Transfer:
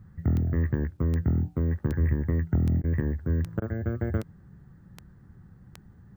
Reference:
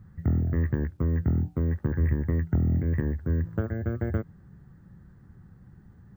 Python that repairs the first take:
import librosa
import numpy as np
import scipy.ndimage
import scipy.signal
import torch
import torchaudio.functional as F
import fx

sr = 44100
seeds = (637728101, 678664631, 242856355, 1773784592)

y = fx.fix_declick_ar(x, sr, threshold=10.0)
y = fx.fix_interpolate(y, sr, at_s=(2.82, 3.6), length_ms=18.0)